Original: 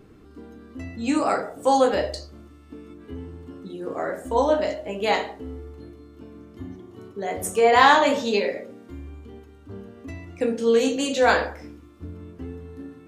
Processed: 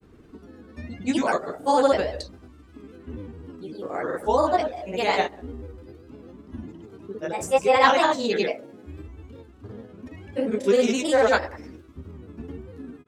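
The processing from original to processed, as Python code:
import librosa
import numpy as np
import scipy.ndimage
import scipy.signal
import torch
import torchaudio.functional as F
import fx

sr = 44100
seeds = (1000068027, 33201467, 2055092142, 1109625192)

y = fx.granulator(x, sr, seeds[0], grain_ms=100.0, per_s=20.0, spray_ms=100.0, spread_st=3)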